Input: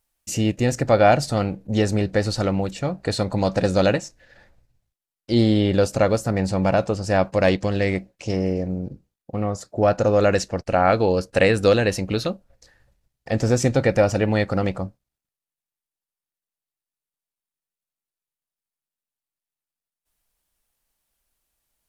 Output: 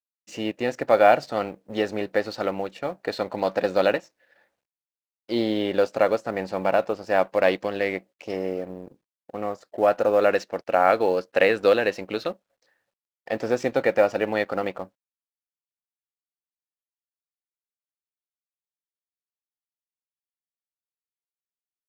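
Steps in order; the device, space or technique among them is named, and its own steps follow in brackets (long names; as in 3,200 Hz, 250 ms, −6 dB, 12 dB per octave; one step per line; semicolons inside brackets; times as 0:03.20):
phone line with mismatched companding (band-pass filter 360–3,300 Hz; mu-law and A-law mismatch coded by A)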